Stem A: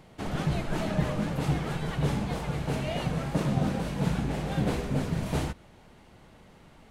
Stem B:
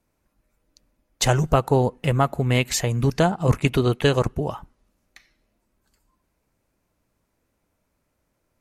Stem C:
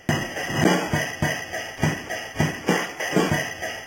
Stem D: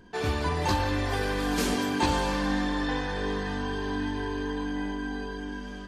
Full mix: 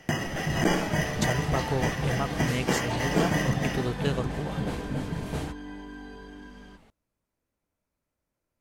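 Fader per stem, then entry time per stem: -3.5, -11.0, -5.5, -9.0 dB; 0.00, 0.00, 0.00, 0.90 s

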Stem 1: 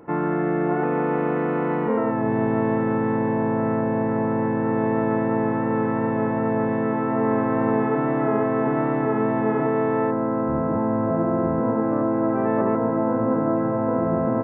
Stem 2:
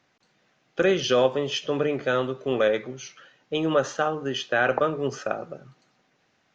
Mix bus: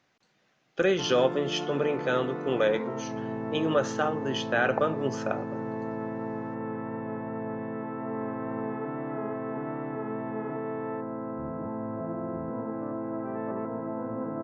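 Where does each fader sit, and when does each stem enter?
-12.0, -3.0 dB; 0.90, 0.00 s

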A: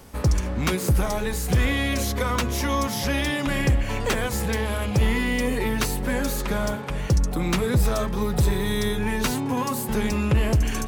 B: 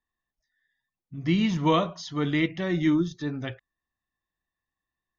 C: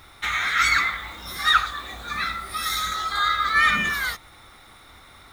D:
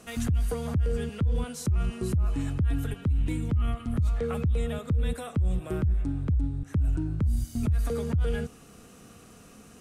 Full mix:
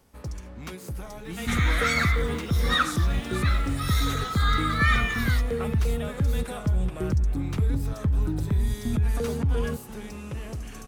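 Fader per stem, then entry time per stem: -14.5, -15.0, -5.5, +1.5 dB; 0.00, 0.00, 1.25, 1.30 s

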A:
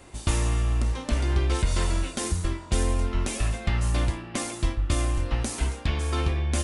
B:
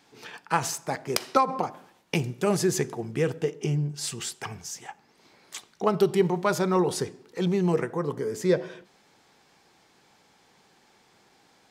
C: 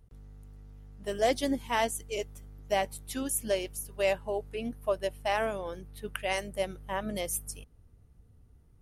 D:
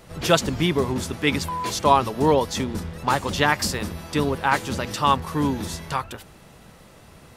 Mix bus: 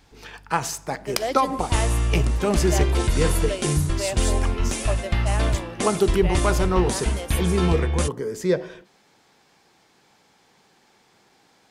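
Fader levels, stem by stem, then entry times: +2.5 dB, +1.5 dB, -1.0 dB, off; 1.45 s, 0.00 s, 0.00 s, off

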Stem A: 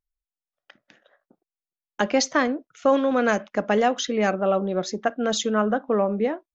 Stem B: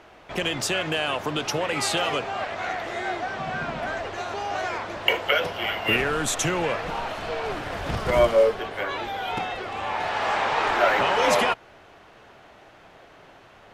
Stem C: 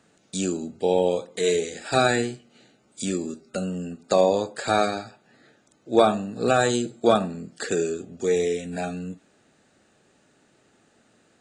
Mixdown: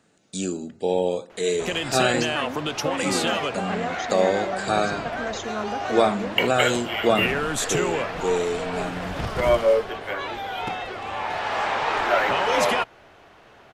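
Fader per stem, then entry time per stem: -9.5, -0.5, -1.5 dB; 0.00, 1.30, 0.00 s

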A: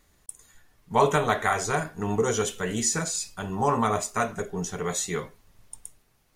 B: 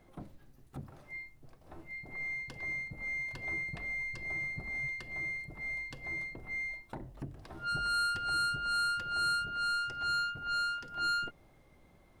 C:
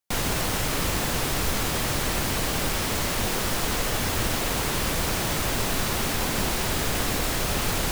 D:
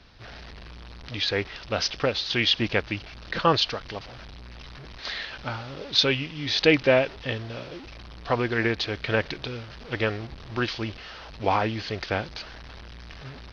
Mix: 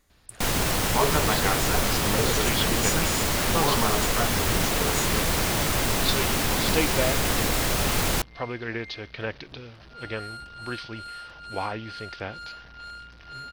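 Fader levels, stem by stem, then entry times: -3.5, -8.5, +1.5, -7.5 dB; 0.00, 2.30, 0.30, 0.10 s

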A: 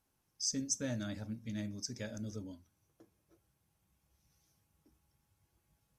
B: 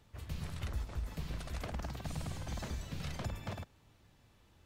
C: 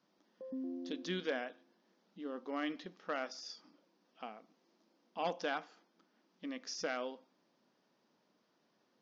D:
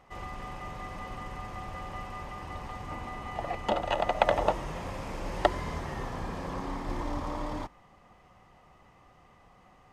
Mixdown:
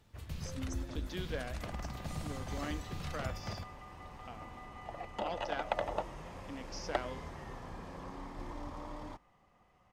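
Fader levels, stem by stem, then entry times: -16.0, -1.0, -3.5, -10.0 dB; 0.00, 0.00, 0.05, 1.50 s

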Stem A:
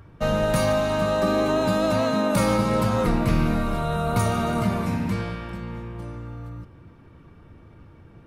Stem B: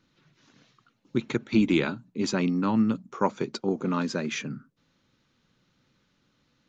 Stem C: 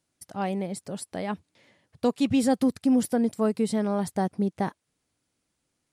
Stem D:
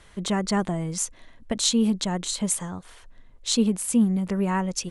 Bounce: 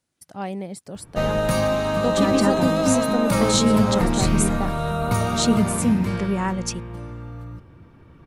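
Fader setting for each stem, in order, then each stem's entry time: +0.5, -17.5, -1.0, +0.5 dB; 0.95, 0.00, 0.00, 1.90 s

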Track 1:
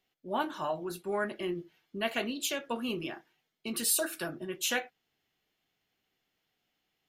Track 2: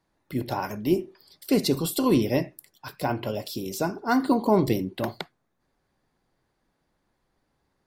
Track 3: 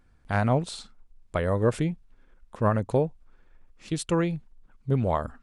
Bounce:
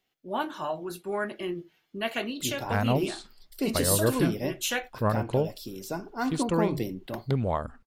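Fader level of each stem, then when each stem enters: +1.5, -7.0, -2.5 dB; 0.00, 2.10, 2.40 s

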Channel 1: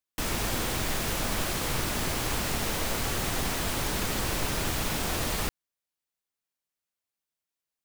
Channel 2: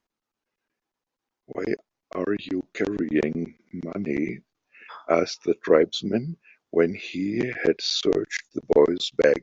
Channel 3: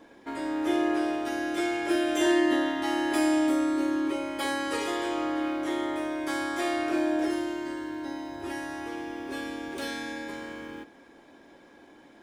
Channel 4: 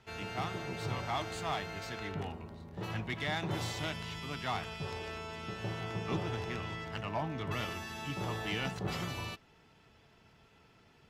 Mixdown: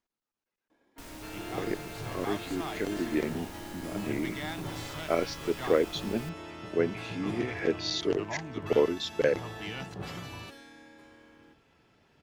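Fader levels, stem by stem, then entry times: -17.5, -7.0, -17.0, -3.0 dB; 0.80, 0.00, 0.70, 1.15 s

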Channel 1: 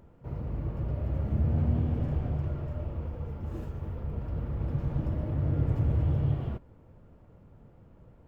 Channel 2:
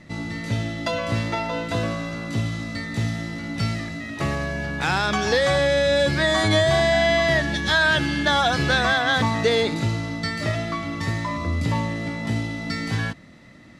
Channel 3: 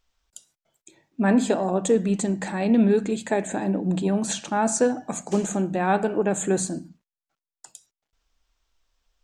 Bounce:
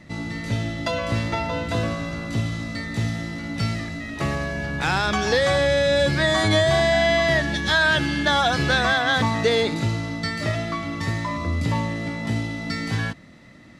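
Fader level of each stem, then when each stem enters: -9.0 dB, 0.0 dB, off; 0.00 s, 0.00 s, off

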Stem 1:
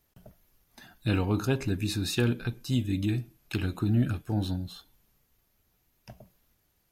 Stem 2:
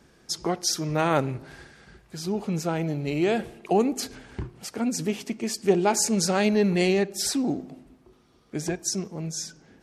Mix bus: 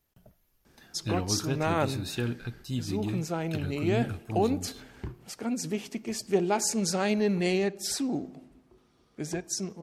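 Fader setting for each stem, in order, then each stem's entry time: -5.0, -4.5 dB; 0.00, 0.65 s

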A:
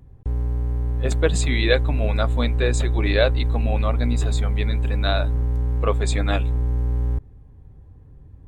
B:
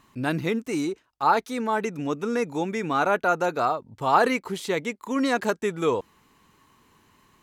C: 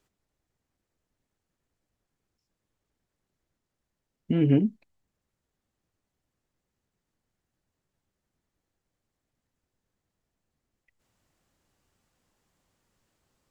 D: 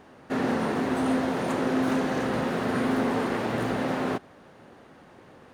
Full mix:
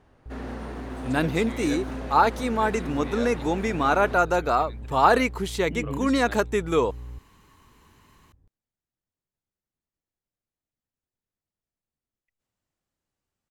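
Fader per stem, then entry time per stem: -16.5, +1.5, -12.0, -10.5 dB; 0.00, 0.90, 1.40, 0.00 s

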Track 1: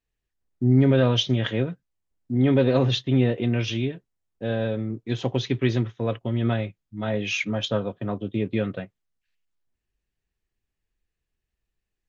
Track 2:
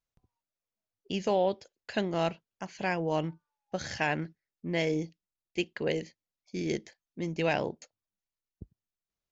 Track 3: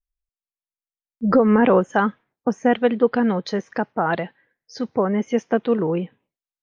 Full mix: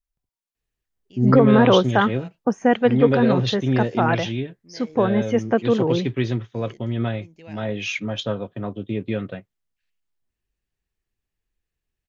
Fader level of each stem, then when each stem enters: -0.5, -16.0, +0.5 dB; 0.55, 0.00, 0.00 s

